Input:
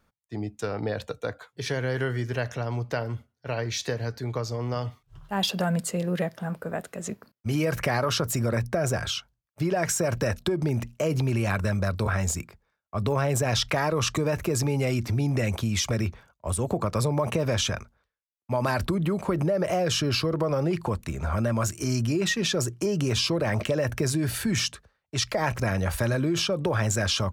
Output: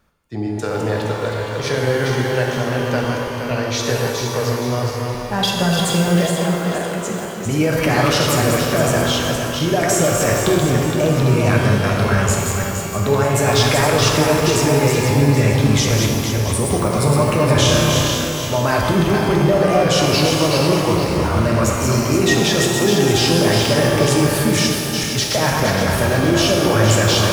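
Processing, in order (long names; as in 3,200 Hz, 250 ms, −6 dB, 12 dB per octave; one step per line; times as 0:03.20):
feedback delay that plays each chunk backwards 234 ms, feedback 64%, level −4 dB
0:17.53–0:18.51: flutter between parallel walls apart 5.5 metres, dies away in 0.66 s
reverb with rising layers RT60 1.6 s, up +12 semitones, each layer −8 dB, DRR 1 dB
level +5.5 dB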